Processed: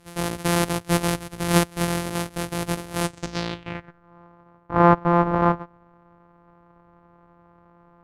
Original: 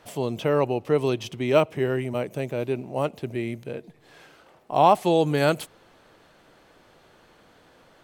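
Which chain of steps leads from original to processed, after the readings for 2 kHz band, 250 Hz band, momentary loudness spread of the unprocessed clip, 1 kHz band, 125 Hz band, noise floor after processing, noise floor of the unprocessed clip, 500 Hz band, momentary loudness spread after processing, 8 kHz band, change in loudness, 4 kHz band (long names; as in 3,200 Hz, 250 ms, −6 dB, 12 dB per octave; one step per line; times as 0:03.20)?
+4.0 dB, +4.0 dB, 12 LU, +2.0 dB, +4.5 dB, −56 dBFS, −57 dBFS, −3.5 dB, 12 LU, +13.0 dB, +1.0 dB, +4.0 dB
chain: samples sorted by size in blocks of 256 samples
low-pass filter sweep 11,000 Hz → 1,100 Hz, 0:03.01–0:04.09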